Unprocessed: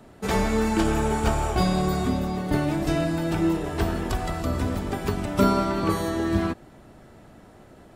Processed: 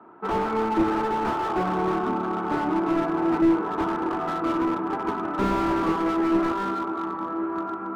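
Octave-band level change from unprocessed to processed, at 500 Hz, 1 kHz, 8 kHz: +0.5 dB, +4.5 dB, below −10 dB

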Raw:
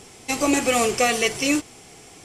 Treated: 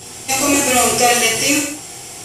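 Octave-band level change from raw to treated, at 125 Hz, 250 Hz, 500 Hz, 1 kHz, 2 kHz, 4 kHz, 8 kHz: +7.5, +3.0, +4.0, +7.5, +6.5, +8.5, +11.5 decibels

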